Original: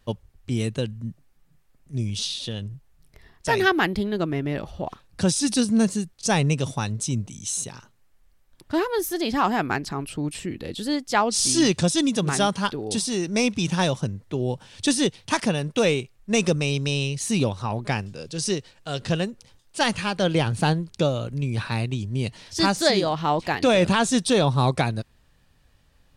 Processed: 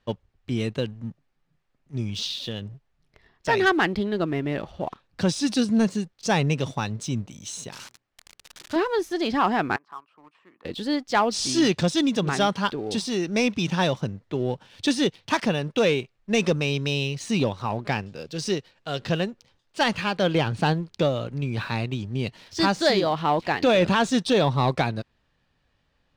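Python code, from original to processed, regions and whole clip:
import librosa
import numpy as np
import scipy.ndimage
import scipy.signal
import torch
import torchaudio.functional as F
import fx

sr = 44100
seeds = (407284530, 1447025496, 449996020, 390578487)

y = fx.chain(x, sr, fx.crossing_spikes(level_db=-22.0),
    fx.tube_stage(drive_db=17.0, bias=0.4),
    fx.hum_notches(base_hz=60, count=7), at=(7.72, 8.76))
y = fx.chain(y, sr, fx.bandpass_q(hz=1100.0, q=5.5),
    fx.band_squash(depth_pct=40), at=(9.76, 10.65))
y = scipy.signal.sosfilt(scipy.signal.butter(2, 4500.0, 'lowpass', fs=sr, output='sos'), y)
y = fx.low_shelf(y, sr, hz=110.0, db=-9.0)
y = fx.leveller(y, sr, passes=1)
y = y * librosa.db_to_amplitude(-2.5)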